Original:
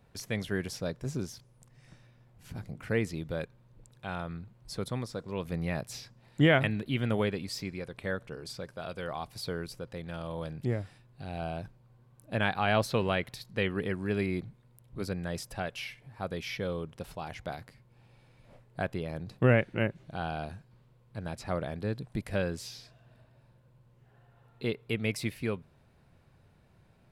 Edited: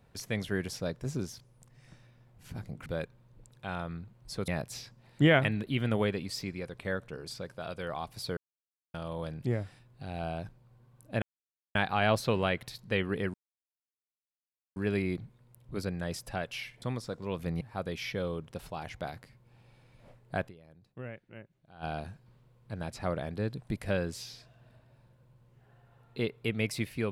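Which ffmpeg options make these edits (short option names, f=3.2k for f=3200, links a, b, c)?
-filter_complex "[0:a]asplit=11[a][b][c][d][e][f][g][h][i][j][k];[a]atrim=end=2.862[l];[b]atrim=start=3.258:end=4.882[m];[c]atrim=start=5.668:end=9.56,asetpts=PTS-STARTPTS,afade=t=out:st=3.888:d=0.004:c=hsin[n];[d]atrim=start=9.56:end=10.13,asetpts=PTS-STARTPTS,volume=0[o];[e]atrim=start=10.13:end=12.41,asetpts=PTS-STARTPTS,afade=t=in:d=0.004:c=hsin,afade=t=out:st=2.276:d=0.004:c=hsin,apad=pad_dur=0.53[p];[f]atrim=start=12.41:end=14,asetpts=PTS-STARTPTS,afade=t=in:d=0.004:c=hsin,afade=t=out:st=1.586:d=0.004:c=hsin,apad=pad_dur=1.42[q];[g]atrim=start=14:end=16.062,asetpts=PTS-STARTPTS,afade=t=in:d=0.004:c=hsin[r];[h]atrim=start=4.878:end=5.672[s];[i]atrim=start=16.058:end=19.1,asetpts=PTS-STARTPTS,afade=t=out:st=2.862:d=0.18:c=exp:silence=0.105925[t];[j]atrim=start=19.1:end=20.11,asetpts=PTS-STARTPTS,volume=-19.5dB[u];[k]atrim=start=20.11,asetpts=PTS-STARTPTS,afade=t=in:d=0.18:c=exp:silence=0.105925[v];[l][m]acrossfade=d=0.004:c1=hsin:c2=hsin[w];[n][o][p][q][r]concat=n=5:v=0:a=1[x];[w][x]acrossfade=d=0.004:c1=hsin:c2=hsin[y];[y][s]acrossfade=d=0.004:c1=hsin:c2=hsin[z];[t][u][v]concat=n=3:v=0:a=1[aa];[z][aa]acrossfade=d=0.004:c1=hsin:c2=hsin"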